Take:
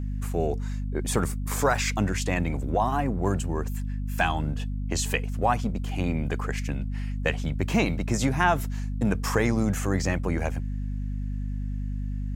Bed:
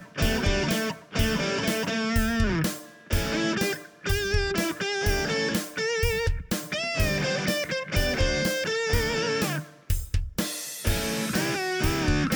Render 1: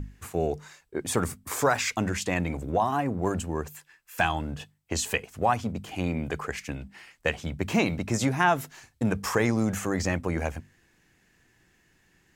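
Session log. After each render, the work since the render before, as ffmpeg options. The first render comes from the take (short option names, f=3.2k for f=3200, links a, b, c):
-af "bandreject=f=50:t=h:w=6,bandreject=f=100:t=h:w=6,bandreject=f=150:t=h:w=6,bandreject=f=200:t=h:w=6,bandreject=f=250:t=h:w=6"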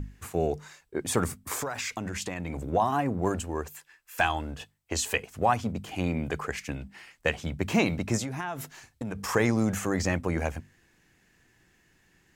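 -filter_complex "[0:a]asettb=1/sr,asplit=3[a][b][c];[a]atrim=end=1.554[d];[b]atrim=start=1.55:end=2.72,asetpts=PTS-STARTPTS,afade=t=in:d=0.004:c=qsin,afade=t=out:st=1.166:d=0.004:c=qsin,acompressor=threshold=-29dB:ratio=6:attack=3.2:release=140:knee=1:detection=peak[e];[c]atrim=start=2.716[f];[d][e]acrossfade=d=0.004:c1=hsin:c2=qsin[g];[g][f]acrossfade=d=0.004:c1=qsin:c2=hsin,asettb=1/sr,asplit=3[h][i][j];[h]atrim=end=3.354[k];[i]atrim=start=3.35:end=5.16,asetpts=PTS-STARTPTS,afade=t=in:d=0.004:c=qsin,afade=t=out:st=1.806:d=0.004:c=qsin,equalizer=f=160:w=1.5:g=-9[l];[j]atrim=start=5.156[m];[k][l]acrossfade=d=0.004:c1=hsin:c2=qsin[n];[n][m]acrossfade=d=0.004:c1=qsin:c2=hsin,asettb=1/sr,asplit=3[o][p][q];[o]atrim=end=8.194[r];[p]atrim=start=8.19:end=9.29,asetpts=PTS-STARTPTS,afade=t=in:d=0.004:c=qsin,afade=t=out:st=1.096:d=0.004:c=qsin,acompressor=threshold=-30dB:ratio=6:attack=3.2:release=140:knee=1:detection=peak[s];[q]atrim=start=9.286[t];[r][s]acrossfade=d=0.004:c1=hsin:c2=qsin[u];[u][t]acrossfade=d=0.004:c1=qsin:c2=hsin"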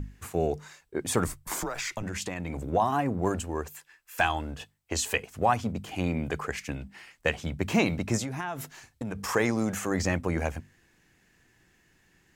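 -filter_complex "[0:a]asettb=1/sr,asplit=3[a][b][c];[a]atrim=end=1.274[d];[b]atrim=start=1.27:end=2.03,asetpts=PTS-STARTPTS,afade=t=in:d=0.004:c=qsin,afade=t=out:st=0.756:d=0.004:c=qsin,afreqshift=-110[e];[c]atrim=start=2.026[f];[d][e]acrossfade=d=0.004:c1=hsin:c2=qsin[g];[g][f]acrossfade=d=0.004:c1=qsin:c2=hsin,asettb=1/sr,asplit=3[h][i][j];[h]atrim=end=9.334[k];[i]atrim=start=9.33:end=9.91,asetpts=PTS-STARTPTS,afade=t=in:d=0.004:c=qsin,afade=t=out:st=0.576:d=0.004:c=qsin,lowshelf=f=120:g=-10.5[l];[j]atrim=start=9.906[m];[k][l]acrossfade=d=0.004:c1=hsin:c2=qsin[n];[n][m]acrossfade=d=0.004:c1=qsin:c2=hsin"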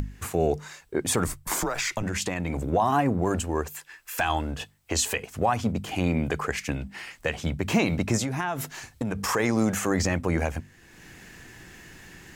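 -filter_complex "[0:a]asplit=2[a][b];[b]acompressor=mode=upward:threshold=-29dB:ratio=2.5,volume=-2.5dB[c];[a][c]amix=inputs=2:normalize=0,alimiter=limit=-12.5dB:level=0:latency=1:release=80"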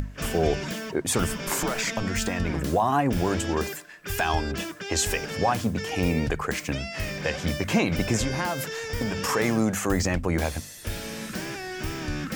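-filter_complex "[1:a]volume=-7dB[a];[0:a][a]amix=inputs=2:normalize=0"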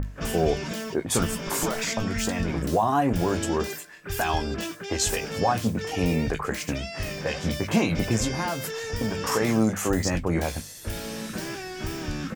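-filter_complex "[0:a]asplit=2[a][b];[b]adelay=18,volume=-11dB[c];[a][c]amix=inputs=2:normalize=0,acrossover=split=2000[d][e];[e]adelay=30[f];[d][f]amix=inputs=2:normalize=0"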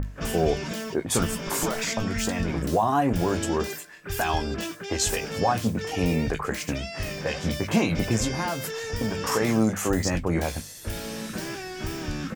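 -af anull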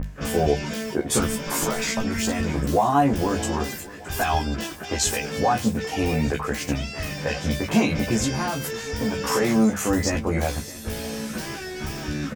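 -filter_complex "[0:a]asplit=2[a][b];[b]adelay=14,volume=-2dB[c];[a][c]amix=inputs=2:normalize=0,aecho=1:1:617|1234|1851|2468:0.119|0.0559|0.0263|0.0123"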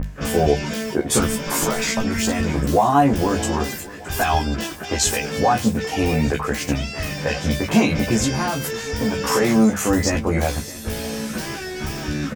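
-af "volume=3.5dB"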